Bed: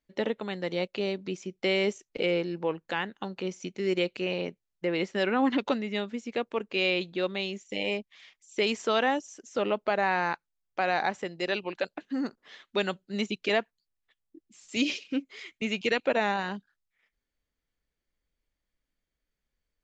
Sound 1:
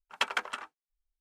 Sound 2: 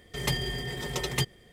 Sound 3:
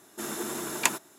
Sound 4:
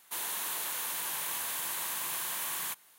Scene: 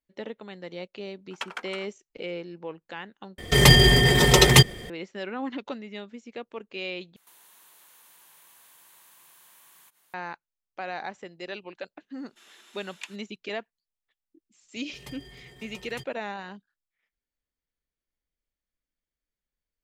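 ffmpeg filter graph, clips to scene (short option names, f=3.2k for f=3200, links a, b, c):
-filter_complex "[2:a]asplit=2[a][b];[0:a]volume=-7.5dB[c];[a]alimiter=level_in=17dB:limit=-1dB:release=50:level=0:latency=1[d];[4:a]acompressor=threshold=-48dB:ratio=6:attack=3.2:release=140:knee=1:detection=peak[e];[3:a]bandpass=f=3k:t=q:w=2:csg=0[f];[c]asplit=3[g][h][i];[g]atrim=end=3.384[j];[d]atrim=end=1.52,asetpts=PTS-STARTPTS,volume=-0.5dB[k];[h]atrim=start=4.896:end=7.164[l];[e]atrim=end=2.98,asetpts=PTS-STARTPTS,volume=-5.5dB[m];[i]atrim=start=10.136[n];[1:a]atrim=end=1.2,asetpts=PTS-STARTPTS,volume=-5.5dB,afade=t=in:d=0.004:c=hsin,afade=t=out:st=1.196:d=0.004:c=hsin,adelay=1200[o];[f]atrim=end=1.18,asetpts=PTS-STARTPTS,volume=-8.5dB,afade=t=in:d=0.004:c=hsin,afade=t=out:st=1.176:d=0.004:c=hsin,adelay=12180[p];[b]atrim=end=1.52,asetpts=PTS-STARTPTS,volume=-16dB,afade=t=in:d=0.004:c=hsin,afade=t=out:st=1.516:d=0.004:c=hsin,adelay=14790[q];[j][k]acrossfade=d=0.004:c1=hsin:c2=hsin[r];[r][l]acrossfade=d=0.004:c1=hsin:c2=hsin[s];[s][m]acrossfade=d=0.004:c1=hsin:c2=hsin[t];[t][n]acrossfade=d=0.004:c1=hsin:c2=hsin[u];[u][o][p][q]amix=inputs=4:normalize=0"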